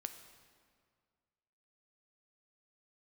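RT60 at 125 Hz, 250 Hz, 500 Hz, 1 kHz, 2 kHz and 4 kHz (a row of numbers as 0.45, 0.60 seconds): 2.2, 2.0, 2.0, 2.0, 1.7, 1.5 seconds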